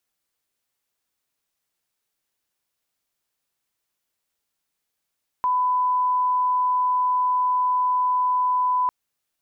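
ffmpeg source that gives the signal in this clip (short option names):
-f lavfi -i "sine=f=1000:d=3.45:r=44100,volume=0.06dB"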